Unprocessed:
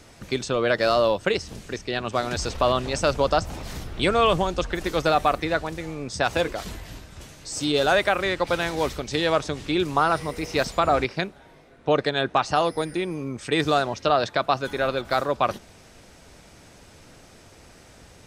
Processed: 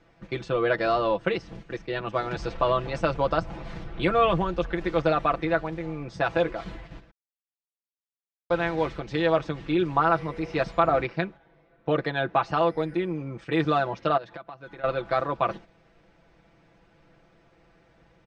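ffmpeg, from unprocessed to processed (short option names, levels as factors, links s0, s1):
-filter_complex "[0:a]asettb=1/sr,asplit=3[s0][s1][s2];[s0]atrim=end=14.174[s3];[s1]atrim=start=14.17:end=14.84,asetpts=PTS-STARTPTS,afade=t=in:d=0.004:c=qsin,afade=t=out:st=0.666:d=0.004:c=qsin,acompressor=threshold=0.0224:ratio=20:attack=3.2:release=140:knee=1:detection=peak[s4];[s2]atrim=start=14.836[s5];[s3][s4]acrossfade=d=0.004:c1=hsin:c2=qsin[s6];[s6][s5]acrossfade=d=0.004:c1=qsin:c2=hsin,asplit=3[s7][s8][s9];[s7]atrim=end=7.11,asetpts=PTS-STARTPTS,afade=t=out:st=7.106:d=0.004:c=hsin[s10];[s8]atrim=start=7.11:end=8.5,asetpts=PTS-STARTPTS,volume=0[s11];[s9]atrim=start=8.5,asetpts=PTS-STARTPTS,afade=t=in:d=0.004:c=hsin[s12];[s10][s11][s12]concat=n=3:v=0:a=1,lowpass=2500,agate=range=0.447:threshold=0.0112:ratio=16:detection=peak,aecho=1:1:6:0.72,volume=0.668"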